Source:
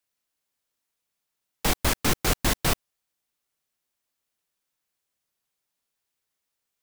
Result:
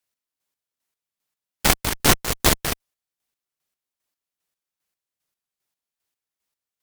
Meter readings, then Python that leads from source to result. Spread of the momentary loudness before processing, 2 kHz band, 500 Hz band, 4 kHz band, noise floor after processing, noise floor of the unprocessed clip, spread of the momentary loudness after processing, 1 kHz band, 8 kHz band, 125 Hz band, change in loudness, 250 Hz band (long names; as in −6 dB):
5 LU, +5.0 dB, +4.5 dB, +6.0 dB, below −85 dBFS, −83 dBFS, 8 LU, +5.0 dB, +6.5 dB, +2.5 dB, +5.5 dB, +3.5 dB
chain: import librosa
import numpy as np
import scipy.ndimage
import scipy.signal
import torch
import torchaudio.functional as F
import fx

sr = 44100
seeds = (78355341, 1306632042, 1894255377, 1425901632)

y = fx.cheby_harmonics(x, sr, harmonics=(5, 7, 8), levels_db=(-32, -13, -21), full_scale_db=-8.5)
y = fx.chopper(y, sr, hz=2.5, depth_pct=60, duty_pct=35)
y = y * 10.0 ** (7.5 / 20.0)